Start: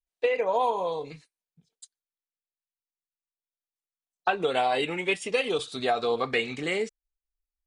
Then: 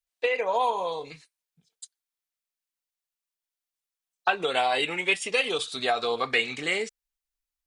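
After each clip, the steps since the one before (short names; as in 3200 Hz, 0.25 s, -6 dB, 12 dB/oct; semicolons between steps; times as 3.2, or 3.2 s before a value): tilt shelf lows -5 dB, about 740 Hz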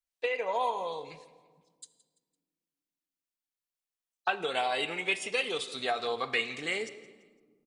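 feedback echo 0.169 s, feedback 38%, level -19 dB; on a send at -15 dB: reverb RT60 1.8 s, pre-delay 36 ms; on the sum: gain -5.5 dB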